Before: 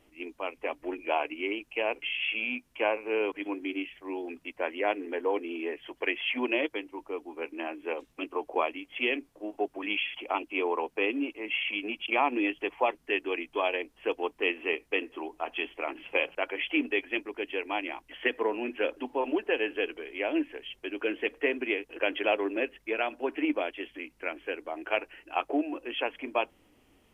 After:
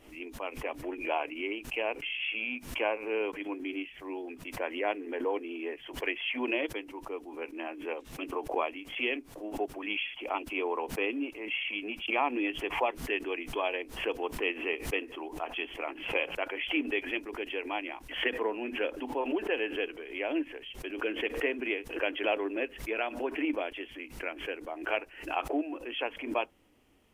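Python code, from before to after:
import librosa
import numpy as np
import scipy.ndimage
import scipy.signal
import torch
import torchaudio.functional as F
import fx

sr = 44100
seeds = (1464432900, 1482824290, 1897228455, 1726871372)

y = fx.pre_swell(x, sr, db_per_s=100.0)
y = F.gain(torch.from_numpy(y), -3.0).numpy()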